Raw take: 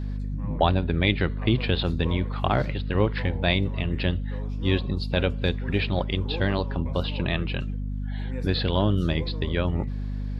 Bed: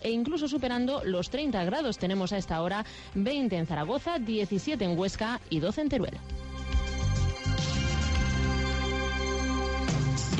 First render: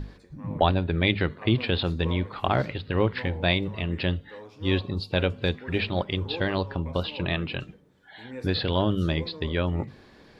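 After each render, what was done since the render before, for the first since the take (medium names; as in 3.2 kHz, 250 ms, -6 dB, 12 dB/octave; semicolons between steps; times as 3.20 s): hum notches 50/100/150/200/250 Hz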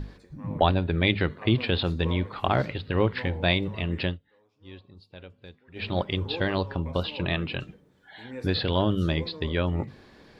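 4.04–5.90 s: dip -21 dB, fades 0.15 s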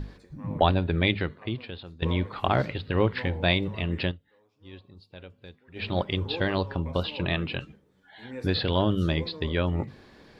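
1.01–2.02 s: fade out quadratic, to -18 dB; 4.11–4.73 s: compression 2:1, threshold -41 dBFS; 7.59–8.23 s: three-phase chorus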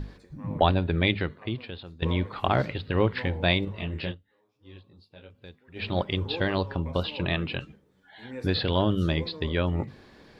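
3.65–5.35 s: detune thickener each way 31 cents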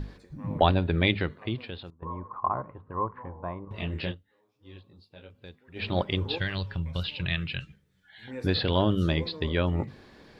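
1.90–3.71 s: four-pole ladder low-pass 1.1 kHz, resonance 85%; 6.38–8.28 s: high-order bell 510 Hz -12.5 dB 2.7 oct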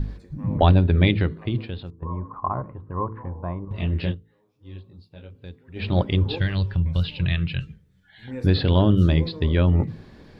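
bass shelf 300 Hz +11.5 dB; de-hum 54.78 Hz, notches 9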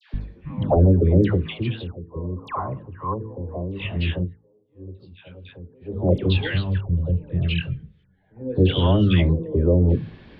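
LFO low-pass square 0.81 Hz 480–3000 Hz; phase dispersion lows, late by 140 ms, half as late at 1.1 kHz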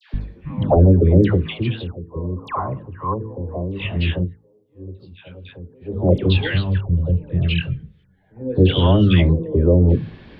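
trim +3.5 dB; peak limiter -2 dBFS, peak gain reduction 1 dB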